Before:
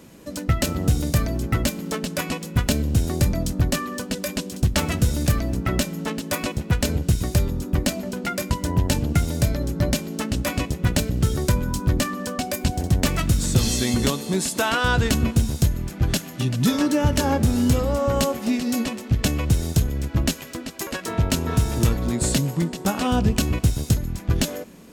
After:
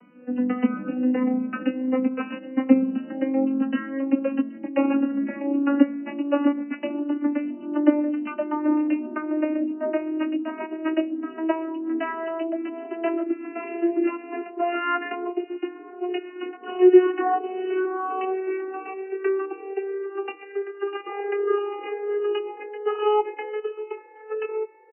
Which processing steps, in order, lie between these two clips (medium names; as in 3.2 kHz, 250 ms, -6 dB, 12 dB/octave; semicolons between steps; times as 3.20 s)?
vocoder on a note that slides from B3, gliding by +10 st; brick-wall FIR low-pass 3 kHz; endless flanger 2.7 ms -1.3 Hz; trim +3 dB